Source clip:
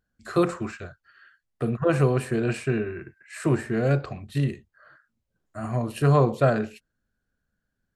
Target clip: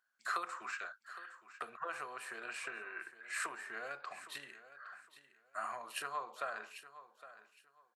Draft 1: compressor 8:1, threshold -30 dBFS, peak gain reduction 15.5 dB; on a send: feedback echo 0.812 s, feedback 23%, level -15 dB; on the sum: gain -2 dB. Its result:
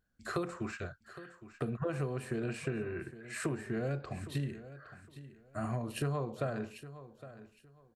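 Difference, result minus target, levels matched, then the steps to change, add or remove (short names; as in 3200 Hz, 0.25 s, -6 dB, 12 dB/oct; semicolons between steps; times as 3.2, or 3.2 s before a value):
1000 Hz band -8.5 dB
add after compressor: resonant high-pass 1100 Hz, resonance Q 1.7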